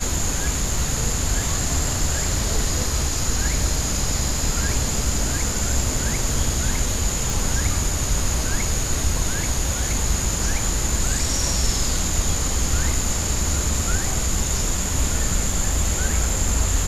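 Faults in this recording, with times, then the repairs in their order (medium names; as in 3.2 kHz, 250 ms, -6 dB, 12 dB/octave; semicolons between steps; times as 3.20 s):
7.30 s: pop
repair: de-click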